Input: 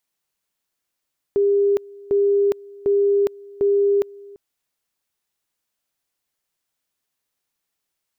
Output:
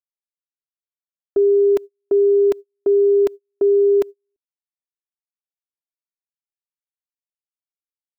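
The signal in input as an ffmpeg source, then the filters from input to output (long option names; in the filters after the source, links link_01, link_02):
-f lavfi -i "aevalsrc='pow(10,(-14-23.5*gte(mod(t,0.75),0.41))/20)*sin(2*PI*402*t)':duration=3:sample_rate=44100"
-af "agate=range=-40dB:threshold=-28dB:ratio=16:detection=peak,aecho=1:1:3:0.78"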